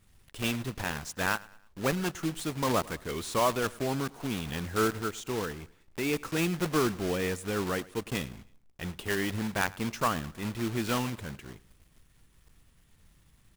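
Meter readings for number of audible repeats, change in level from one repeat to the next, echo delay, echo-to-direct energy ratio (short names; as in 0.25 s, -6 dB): 2, -7.5 dB, 0.106 s, -21.0 dB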